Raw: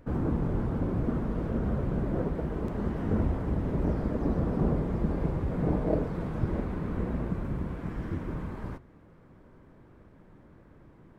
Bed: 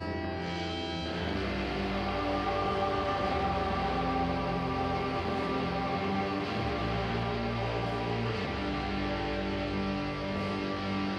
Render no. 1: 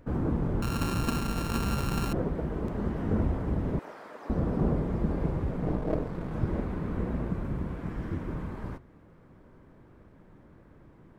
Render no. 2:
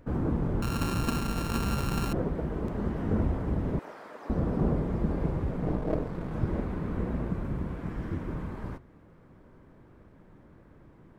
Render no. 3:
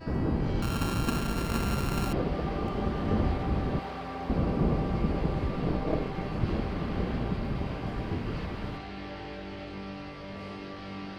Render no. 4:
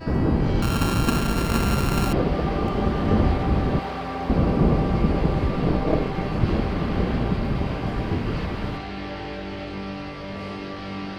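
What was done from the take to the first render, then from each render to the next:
0:00.62–0:02.13: samples sorted by size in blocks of 32 samples; 0:03.79–0:04.30: high-pass filter 930 Hz; 0:05.51–0:06.31: gain on one half-wave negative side −7 dB
no processing that can be heard
mix in bed −7.5 dB
level +7.5 dB

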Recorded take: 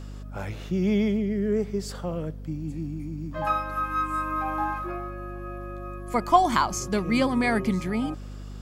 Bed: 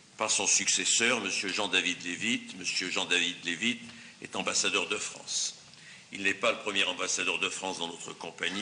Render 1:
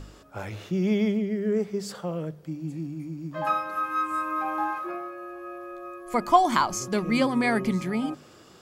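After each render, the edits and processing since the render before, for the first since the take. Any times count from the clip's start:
hum removal 50 Hz, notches 5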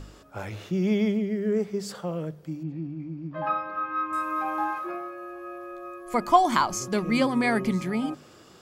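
0:02.63–0:04.13: high-frequency loss of the air 300 metres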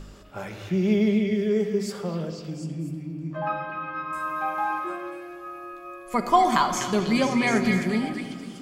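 echo through a band-pass that steps 247 ms, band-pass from 2,600 Hz, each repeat 0.7 octaves, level −2 dB
rectangular room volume 3,700 cubic metres, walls mixed, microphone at 1.2 metres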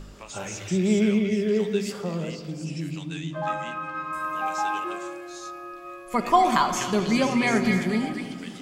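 mix in bed −13.5 dB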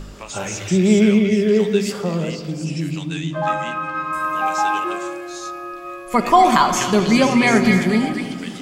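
level +7.5 dB
brickwall limiter −2 dBFS, peak gain reduction 2.5 dB

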